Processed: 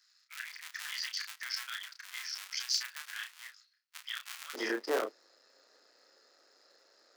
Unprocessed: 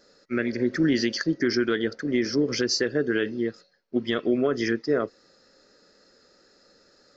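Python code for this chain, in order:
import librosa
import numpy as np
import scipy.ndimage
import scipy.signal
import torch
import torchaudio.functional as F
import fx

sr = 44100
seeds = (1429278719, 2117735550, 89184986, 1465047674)

y = fx.cycle_switch(x, sr, every=3, mode='muted')
y = fx.bessel_highpass(y, sr, hz=fx.steps((0.0, 2100.0), (4.53, 470.0)), order=6)
y = fx.doubler(y, sr, ms=32.0, db=-5.5)
y = F.gain(torch.from_numpy(y), -4.5).numpy()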